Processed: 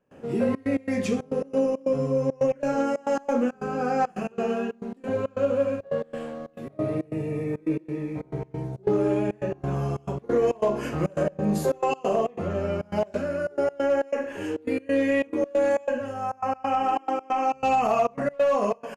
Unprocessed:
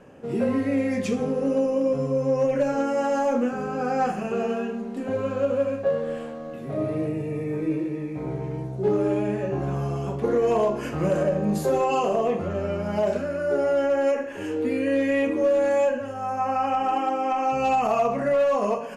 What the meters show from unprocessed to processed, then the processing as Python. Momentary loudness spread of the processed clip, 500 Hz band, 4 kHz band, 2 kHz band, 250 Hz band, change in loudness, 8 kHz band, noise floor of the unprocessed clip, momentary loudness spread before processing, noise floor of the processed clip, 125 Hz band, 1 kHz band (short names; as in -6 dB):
8 LU, -2.0 dB, -1.5 dB, -1.5 dB, -1.5 dB, -2.0 dB, -1.5 dB, -34 dBFS, 7 LU, -53 dBFS, -1.5 dB, -1.5 dB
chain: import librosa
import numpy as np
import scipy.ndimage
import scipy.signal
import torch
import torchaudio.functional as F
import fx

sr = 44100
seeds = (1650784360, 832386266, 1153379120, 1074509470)

y = fx.step_gate(x, sr, bpm=137, pattern='.xxxx.x.xxx.x.xx', floor_db=-24.0, edge_ms=4.5)